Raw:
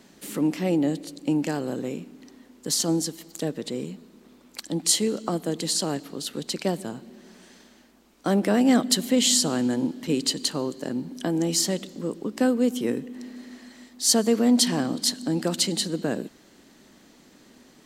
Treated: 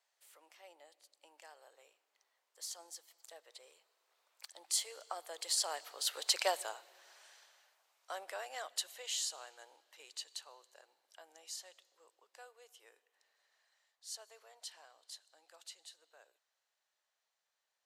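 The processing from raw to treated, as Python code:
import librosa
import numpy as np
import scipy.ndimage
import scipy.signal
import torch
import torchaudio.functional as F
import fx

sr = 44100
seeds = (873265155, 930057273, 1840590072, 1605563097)

y = fx.doppler_pass(x, sr, speed_mps=11, closest_m=4.0, pass_at_s=6.42)
y = scipy.signal.sosfilt(scipy.signal.cheby2(4, 50, 250.0, 'highpass', fs=sr, output='sos'), y)
y = y * librosa.db_to_amplitude(1.0)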